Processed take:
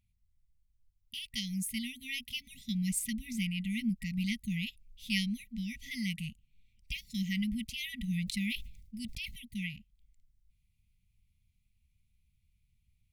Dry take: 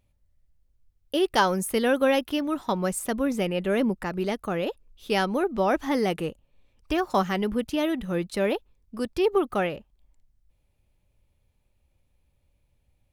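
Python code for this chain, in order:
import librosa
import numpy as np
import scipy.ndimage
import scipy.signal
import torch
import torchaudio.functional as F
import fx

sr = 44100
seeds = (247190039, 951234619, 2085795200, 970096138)

y = fx.rider(x, sr, range_db=10, speed_s=0.5)
y = fx.brickwall_bandstop(y, sr, low_hz=240.0, high_hz=1900.0)
y = fx.sustainer(y, sr, db_per_s=60.0, at=(8.17, 9.43))
y = y * librosa.db_to_amplitude(-3.0)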